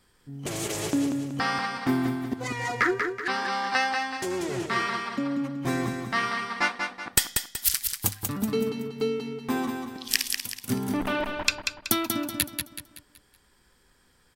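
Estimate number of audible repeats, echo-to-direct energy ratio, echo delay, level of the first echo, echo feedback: 4, -4.5 dB, 188 ms, -5.5 dB, 41%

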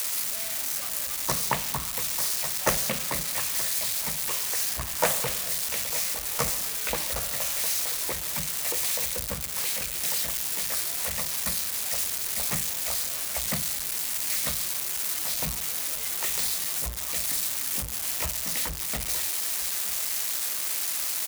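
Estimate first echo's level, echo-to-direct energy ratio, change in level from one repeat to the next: -18.5 dB, -18.0 dB, -10.0 dB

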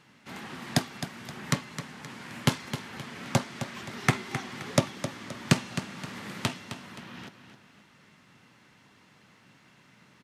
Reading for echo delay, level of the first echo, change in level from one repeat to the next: 262 ms, -10.5 dB, -8.0 dB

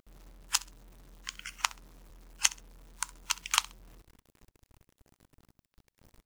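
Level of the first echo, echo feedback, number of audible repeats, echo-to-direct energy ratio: -21.0 dB, 26%, 2, -20.5 dB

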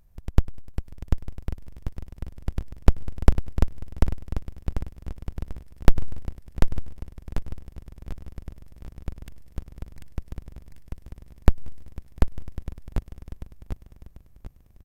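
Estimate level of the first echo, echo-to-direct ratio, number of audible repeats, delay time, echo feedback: -4.0 dB, -3.5 dB, 4, 742 ms, 37%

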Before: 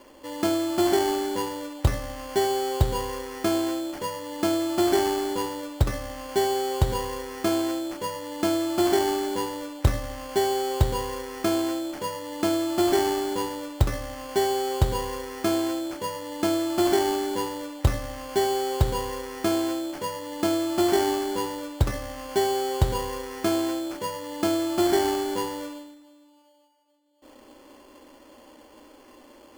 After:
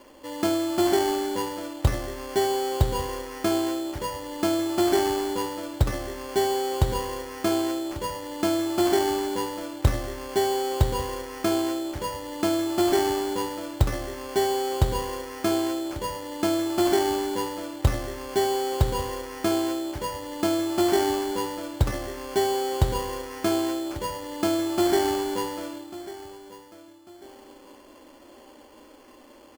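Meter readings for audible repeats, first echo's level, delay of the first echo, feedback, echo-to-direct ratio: 2, -16.5 dB, 1145 ms, 34%, -16.0 dB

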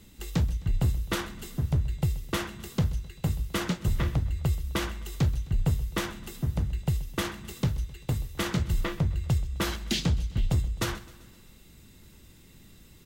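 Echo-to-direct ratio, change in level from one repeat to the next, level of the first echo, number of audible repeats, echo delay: -17.5 dB, -5.0 dB, -19.0 dB, 4, 130 ms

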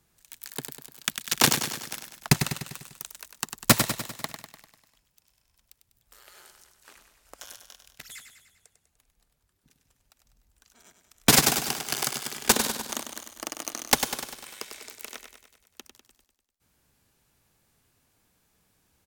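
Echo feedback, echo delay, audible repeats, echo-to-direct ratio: 56%, 99 ms, 6, -6.5 dB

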